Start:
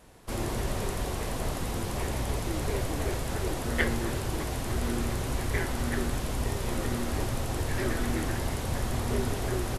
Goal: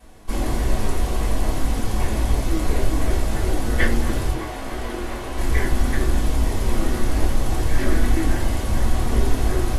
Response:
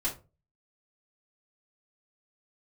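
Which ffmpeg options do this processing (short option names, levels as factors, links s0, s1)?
-filter_complex "[0:a]asettb=1/sr,asplit=3[s0][s1][s2];[s0]atrim=end=4.314[s3];[s1]atrim=start=4.31:end=5.38,asetpts=PTS-STARTPTS,afade=t=in:d=0.004:c=qsin,afade=t=out:st=1.066:d=0.004:c=qsin,bass=f=250:g=-12,treble=f=4000:g=-7[s4];[s2]atrim=start=5.376[s5];[s3][s4]acrossfade=d=0.004:c1=hsin:c2=qsin[s6];[s6][s5]acrossfade=d=0.004:c1=qsin:c2=hsin[s7];[1:a]atrim=start_sample=2205[s8];[s7][s8]afir=irnorm=-1:irlink=0"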